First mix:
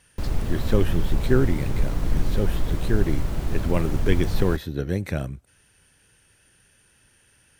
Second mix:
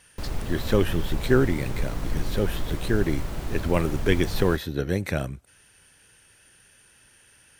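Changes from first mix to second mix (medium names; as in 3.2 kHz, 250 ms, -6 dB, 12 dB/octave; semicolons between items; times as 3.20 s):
speech +4.0 dB; master: add bass shelf 350 Hz -6 dB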